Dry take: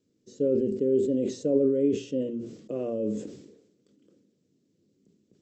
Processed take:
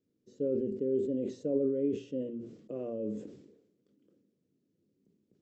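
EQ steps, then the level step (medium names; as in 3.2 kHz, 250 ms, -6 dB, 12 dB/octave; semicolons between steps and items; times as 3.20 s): treble shelf 4 kHz -11.5 dB; -6.5 dB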